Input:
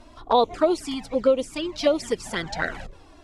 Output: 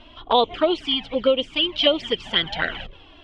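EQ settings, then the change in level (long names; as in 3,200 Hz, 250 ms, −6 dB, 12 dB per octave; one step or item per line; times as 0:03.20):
low-pass with resonance 3,100 Hz, resonance Q 8.6
0.0 dB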